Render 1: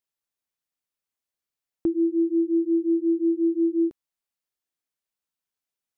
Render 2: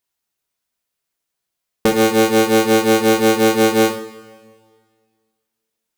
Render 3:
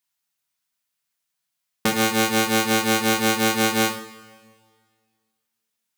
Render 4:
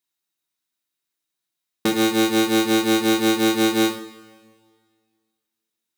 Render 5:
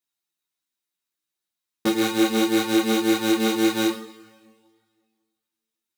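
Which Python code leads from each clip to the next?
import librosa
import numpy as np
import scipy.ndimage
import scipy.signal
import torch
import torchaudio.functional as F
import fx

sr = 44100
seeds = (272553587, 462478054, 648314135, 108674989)

y1 = fx.cycle_switch(x, sr, every=3, mode='inverted')
y1 = fx.rev_double_slope(y1, sr, seeds[0], early_s=0.49, late_s=1.9, knee_db=-18, drr_db=2.5)
y1 = y1 * 10.0 ** (8.0 / 20.0)
y2 = scipy.signal.sosfilt(scipy.signal.butter(2, 110.0, 'highpass', fs=sr, output='sos'), y1)
y2 = fx.peak_eq(y2, sr, hz=420.0, db=-12.5, octaves=1.4)
y3 = fx.small_body(y2, sr, hz=(330.0, 3800.0), ring_ms=35, db=13)
y3 = y3 * 10.0 ** (-3.5 / 20.0)
y4 = fx.ensemble(y3, sr)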